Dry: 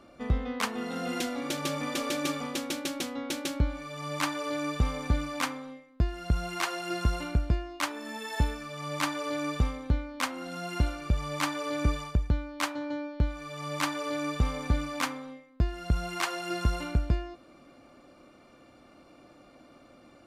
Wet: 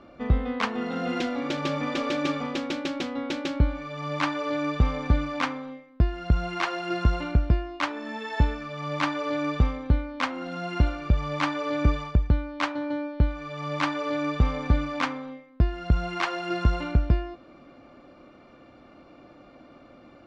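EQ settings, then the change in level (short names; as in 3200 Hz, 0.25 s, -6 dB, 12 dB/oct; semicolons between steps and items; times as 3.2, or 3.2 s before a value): air absorption 180 m; +5.0 dB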